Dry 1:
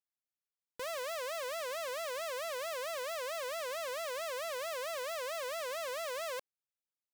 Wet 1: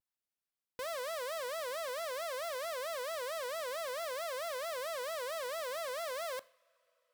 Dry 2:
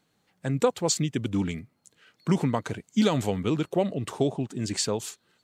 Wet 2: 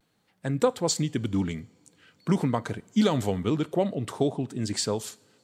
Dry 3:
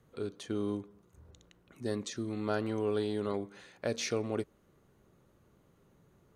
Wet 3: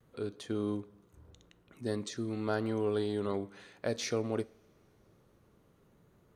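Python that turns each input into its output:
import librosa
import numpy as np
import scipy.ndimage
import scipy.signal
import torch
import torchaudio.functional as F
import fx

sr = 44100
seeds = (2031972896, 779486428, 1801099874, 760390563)

y = fx.peak_eq(x, sr, hz=6600.0, db=-3.5, octaves=0.27)
y = fx.rev_double_slope(y, sr, seeds[0], early_s=0.52, late_s=4.7, knee_db=-22, drr_db=18.0)
y = fx.dynamic_eq(y, sr, hz=2600.0, q=4.1, threshold_db=-55.0, ratio=4.0, max_db=-5)
y = fx.vibrato(y, sr, rate_hz=0.52, depth_cents=27.0)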